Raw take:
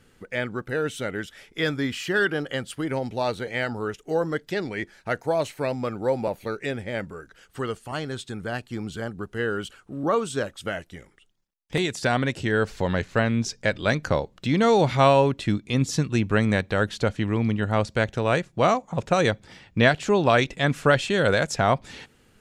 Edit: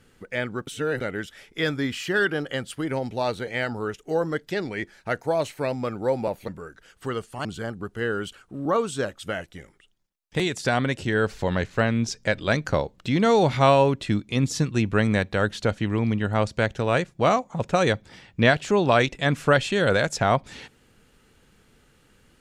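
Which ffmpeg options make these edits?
ffmpeg -i in.wav -filter_complex "[0:a]asplit=5[link_01][link_02][link_03][link_04][link_05];[link_01]atrim=end=0.672[link_06];[link_02]atrim=start=0.668:end=1.012,asetpts=PTS-STARTPTS,areverse[link_07];[link_03]atrim=start=1.008:end=6.482[link_08];[link_04]atrim=start=7.008:end=7.982[link_09];[link_05]atrim=start=8.828[link_10];[link_06][link_07]acrossfade=duration=0.004:curve1=hsin:curve2=hsin[link_11];[link_11][link_08]acrossfade=duration=0.004:curve1=hsin:curve2=hsin[link_12];[link_12][link_09]acrossfade=duration=0.004:curve1=hsin:curve2=hsin[link_13];[link_13][link_10]acrossfade=duration=0.004:curve1=hsin:curve2=hsin" out.wav

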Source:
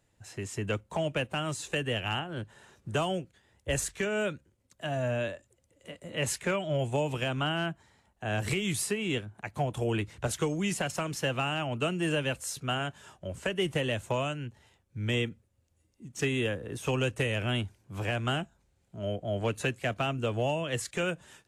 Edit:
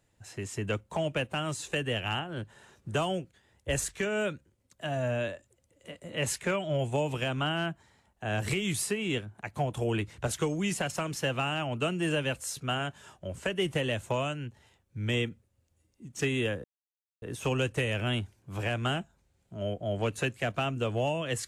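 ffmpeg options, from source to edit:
ffmpeg -i in.wav -filter_complex "[0:a]asplit=2[link_01][link_02];[link_01]atrim=end=16.64,asetpts=PTS-STARTPTS,afade=type=out:start_time=16.636:duration=0.004:curve=hsin,apad=pad_dur=0.58[link_03];[link_02]atrim=start=16.64,asetpts=PTS-STARTPTS,afade=type=in:duration=0.004:curve=hsin[link_04];[link_03][link_04]concat=n=2:v=0:a=1" out.wav

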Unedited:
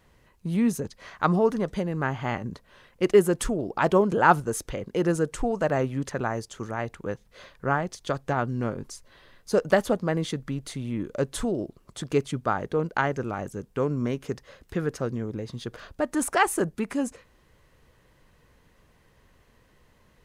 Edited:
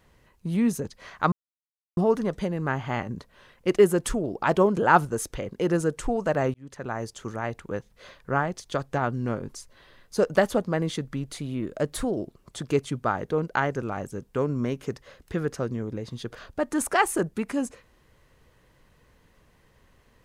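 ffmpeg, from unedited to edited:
ffmpeg -i in.wav -filter_complex "[0:a]asplit=5[link_01][link_02][link_03][link_04][link_05];[link_01]atrim=end=1.32,asetpts=PTS-STARTPTS,afade=type=out:start_time=1.316:duration=0.004:curve=hsin,apad=pad_dur=0.65[link_06];[link_02]atrim=start=1.32:end=5.89,asetpts=PTS-STARTPTS,afade=type=in:duration=0.004:curve=hsin,afade=type=out:start_time=4.566:duration=0.004:curve=hsin[link_07];[link_03]atrim=start=5.89:end=10.724,asetpts=PTS-STARTPTS,afade=type=in:duration=0.57[link_08];[link_04]atrim=start=10.72:end=11.58,asetpts=PTS-STARTPTS,asetrate=47628,aresample=44100[link_09];[link_05]atrim=start=11.576[link_10];[link_06][link_07][link_08]concat=n=3:v=0:a=1[link_11];[link_11][link_09]acrossfade=duration=0.004:curve1=hsin:curve2=hsin[link_12];[link_12][link_10]acrossfade=duration=0.004:curve1=hsin:curve2=hsin" out.wav

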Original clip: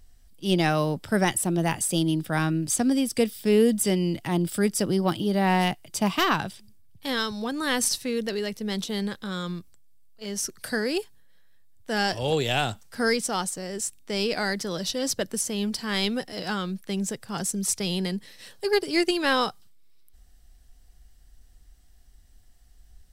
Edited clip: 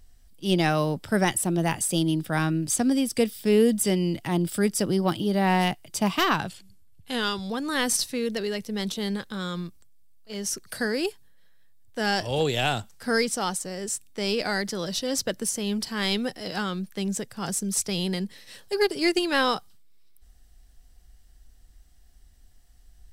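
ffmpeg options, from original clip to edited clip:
ffmpeg -i in.wav -filter_complex "[0:a]asplit=3[link_01][link_02][link_03];[link_01]atrim=end=6.484[link_04];[link_02]atrim=start=6.48:end=7.42,asetpts=PTS-STARTPTS,asetrate=40572,aresample=44100[link_05];[link_03]atrim=start=7.416[link_06];[link_04][link_05]acrossfade=duration=0.004:curve1=hsin:curve2=hsin[link_07];[link_07][link_06]acrossfade=duration=0.004:curve1=hsin:curve2=hsin" out.wav

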